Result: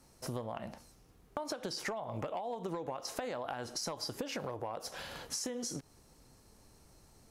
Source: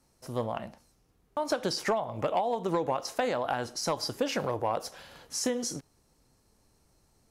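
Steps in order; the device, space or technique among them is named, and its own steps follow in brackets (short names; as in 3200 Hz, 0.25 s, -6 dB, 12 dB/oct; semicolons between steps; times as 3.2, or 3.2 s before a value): serial compression, peaks first (compressor, threshold -37 dBFS, peak gain reduction 13 dB; compressor 2:1, threshold -44 dBFS, peak gain reduction 6 dB); gain +5.5 dB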